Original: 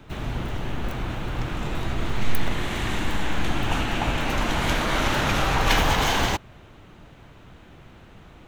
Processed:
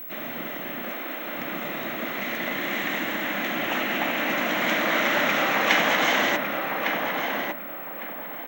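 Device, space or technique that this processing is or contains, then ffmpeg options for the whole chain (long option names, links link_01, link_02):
old television with a line whistle: -filter_complex "[0:a]asettb=1/sr,asplit=3[link_01][link_02][link_03];[link_01]atrim=end=0.924[link_04];[link_02]atrim=start=0.92:end=1.37,asetpts=PTS-STARTPTS,afade=type=in:duration=0.004:curve=qsin,afade=type=out:start_time=0.446:duration=0.004:curve=qsin,highpass=frequency=240:width=0.5412,highpass=frequency=240:width=1.3066[link_05];[link_03]atrim=start=1.366[link_06];[link_04][link_05]acrossfade=duration=0.004:curve1=hsin:curve2=qsin[link_07];[link_07][link_06]acrossfade=duration=0.004:curve1=qsin:curve2=hsin,highpass=frequency=220:width=0.5412,highpass=frequency=220:width=1.3066,equalizer=frequency=410:width_type=q:width=4:gain=-6,equalizer=frequency=590:width_type=q:width=4:gain=5,equalizer=frequency=900:width_type=q:width=4:gain=-5,equalizer=frequency=2000:width_type=q:width=4:gain=8,equalizer=frequency=4700:width_type=q:width=4:gain=-9,lowpass=frequency=6600:width=0.5412,lowpass=frequency=6600:width=1.3066,aeval=exprs='val(0)+0.0178*sin(2*PI*15734*n/s)':channel_layout=same,asplit=2[link_08][link_09];[link_09]adelay=1155,lowpass=frequency=1900:poles=1,volume=-3dB,asplit=2[link_10][link_11];[link_11]adelay=1155,lowpass=frequency=1900:poles=1,volume=0.33,asplit=2[link_12][link_13];[link_13]adelay=1155,lowpass=frequency=1900:poles=1,volume=0.33,asplit=2[link_14][link_15];[link_15]adelay=1155,lowpass=frequency=1900:poles=1,volume=0.33[link_16];[link_08][link_10][link_12][link_14][link_16]amix=inputs=5:normalize=0"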